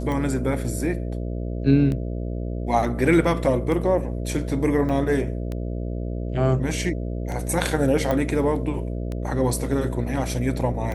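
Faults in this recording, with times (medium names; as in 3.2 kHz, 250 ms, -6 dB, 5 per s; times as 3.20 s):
buzz 60 Hz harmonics 11 -28 dBFS
tick 33 1/3 rpm -18 dBFS
4.89 s: dropout 2.6 ms
8.11 s: pop -12 dBFS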